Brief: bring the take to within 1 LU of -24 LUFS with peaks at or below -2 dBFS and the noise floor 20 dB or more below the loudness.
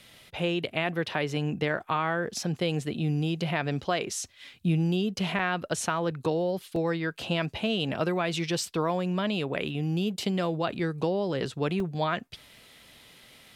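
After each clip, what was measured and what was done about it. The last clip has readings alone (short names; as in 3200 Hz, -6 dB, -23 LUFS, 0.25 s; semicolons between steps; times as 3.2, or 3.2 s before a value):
dropouts 3; longest dropout 2.3 ms; loudness -29.0 LUFS; peak -12.5 dBFS; loudness target -24.0 LUFS
-> interpolate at 5.39/6.76/11.8, 2.3 ms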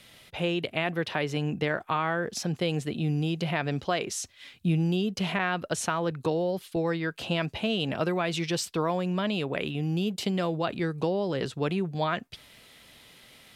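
dropouts 0; loudness -29.0 LUFS; peak -12.5 dBFS; loudness target -24.0 LUFS
-> gain +5 dB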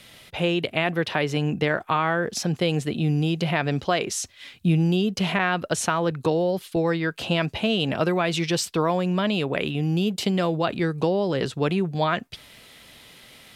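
loudness -24.0 LUFS; peak -7.5 dBFS; noise floor -50 dBFS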